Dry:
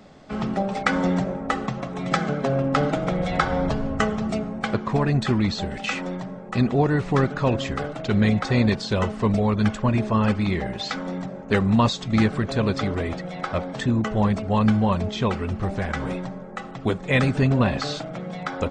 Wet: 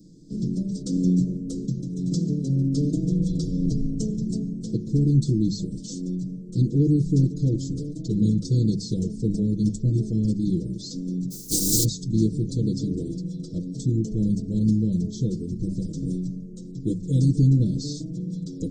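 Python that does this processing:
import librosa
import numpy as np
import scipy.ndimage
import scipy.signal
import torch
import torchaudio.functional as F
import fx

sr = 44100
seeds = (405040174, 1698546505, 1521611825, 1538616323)

y = fx.spec_flatten(x, sr, power=0.22, at=(11.3, 11.83), fade=0.02)
y = scipy.signal.sosfilt(scipy.signal.cheby2(4, 50, [730.0, 2600.0], 'bandstop', fs=sr, output='sos'), y)
y = fx.hum_notches(y, sr, base_hz=50, count=4)
y = y + 0.83 * np.pad(y, (int(6.3 * sr / 1000.0), 0))[:len(y)]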